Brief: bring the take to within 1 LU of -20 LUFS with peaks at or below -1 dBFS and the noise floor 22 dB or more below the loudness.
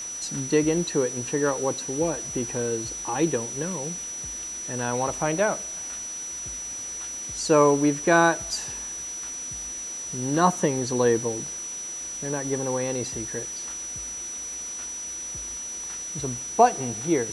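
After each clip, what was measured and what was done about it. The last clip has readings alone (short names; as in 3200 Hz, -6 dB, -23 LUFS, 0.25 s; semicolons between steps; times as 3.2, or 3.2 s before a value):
steady tone 5900 Hz; tone level -32 dBFS; noise floor -35 dBFS; noise floor target -48 dBFS; loudness -26.0 LUFS; peak -5.5 dBFS; loudness target -20.0 LUFS
-> notch 5900 Hz, Q 30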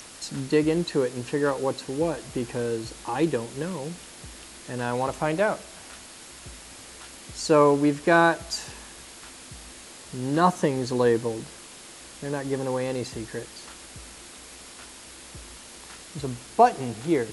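steady tone none; noise floor -45 dBFS; noise floor target -48 dBFS
-> denoiser 6 dB, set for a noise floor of -45 dBFS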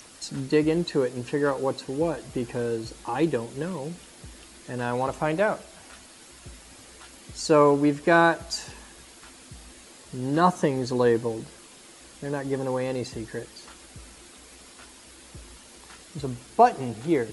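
noise floor -49 dBFS; loudness -25.5 LUFS; peak -5.5 dBFS; loudness target -20.0 LUFS
-> gain +5.5 dB; limiter -1 dBFS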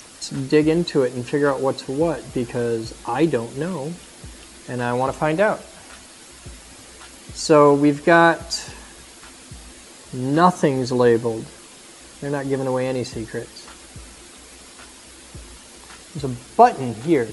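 loudness -20.0 LUFS; peak -1.0 dBFS; noise floor -44 dBFS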